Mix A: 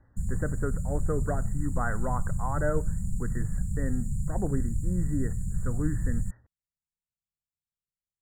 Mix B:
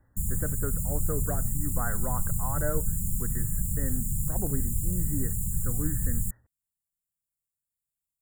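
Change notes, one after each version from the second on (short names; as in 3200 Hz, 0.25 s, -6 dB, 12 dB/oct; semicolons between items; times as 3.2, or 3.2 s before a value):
speech -3.5 dB; master: remove air absorption 110 m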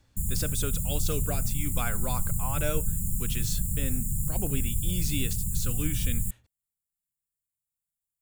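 speech: remove brick-wall FIR low-pass 2000 Hz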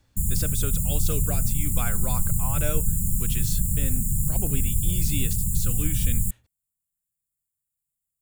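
background +5.0 dB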